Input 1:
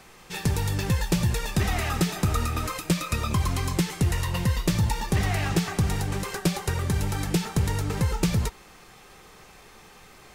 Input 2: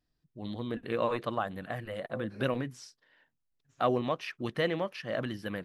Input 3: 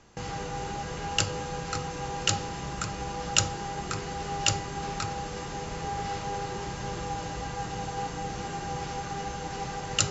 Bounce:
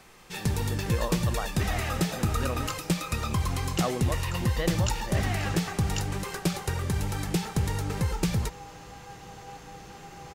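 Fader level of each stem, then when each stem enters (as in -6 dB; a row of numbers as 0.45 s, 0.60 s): -3.0 dB, -3.0 dB, -11.0 dB; 0.00 s, 0.00 s, 1.50 s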